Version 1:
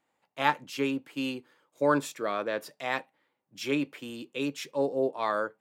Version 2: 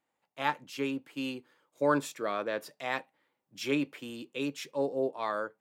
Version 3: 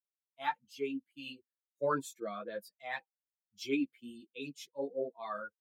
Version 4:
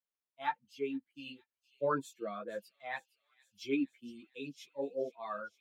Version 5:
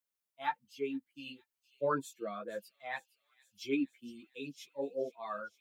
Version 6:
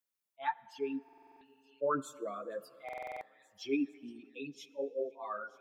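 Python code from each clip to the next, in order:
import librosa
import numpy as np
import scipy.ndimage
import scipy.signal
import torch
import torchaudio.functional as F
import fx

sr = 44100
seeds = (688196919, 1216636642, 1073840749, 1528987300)

y1 = fx.rider(x, sr, range_db=10, speed_s=2.0)
y1 = y1 * 10.0 ** (-4.0 / 20.0)
y2 = fx.bin_expand(y1, sr, power=2.0)
y2 = fx.ensemble(y2, sr)
y2 = y2 * 10.0 ** (1.0 / 20.0)
y3 = fx.high_shelf(y2, sr, hz=4400.0, db=-8.5)
y3 = fx.echo_wet_highpass(y3, sr, ms=463, feedback_pct=66, hz=4200.0, wet_db=-14.5)
y4 = fx.high_shelf(y3, sr, hz=7600.0, db=6.5)
y5 = fx.envelope_sharpen(y4, sr, power=1.5)
y5 = fx.rev_plate(y5, sr, seeds[0], rt60_s=3.1, hf_ratio=0.55, predelay_ms=0, drr_db=18.0)
y5 = fx.buffer_glitch(y5, sr, at_s=(1.04, 2.84), block=2048, repeats=7)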